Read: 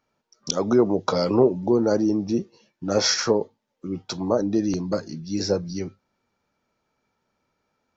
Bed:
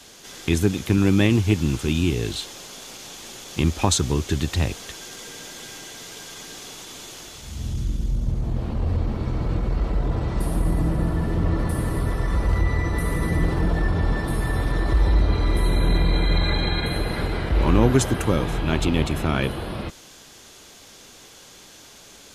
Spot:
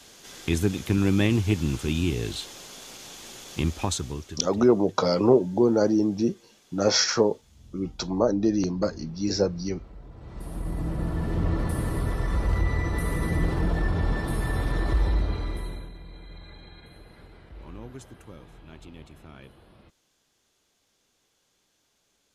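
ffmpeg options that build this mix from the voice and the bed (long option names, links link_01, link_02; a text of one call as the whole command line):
ffmpeg -i stem1.wav -i stem2.wav -filter_complex "[0:a]adelay=3900,volume=-0.5dB[link_01];[1:a]volume=14.5dB,afade=type=out:start_time=3.51:duration=0.95:silence=0.125893,afade=type=in:start_time=10.16:duration=1.23:silence=0.11885,afade=type=out:start_time=14.88:duration=1.03:silence=0.0891251[link_02];[link_01][link_02]amix=inputs=2:normalize=0" out.wav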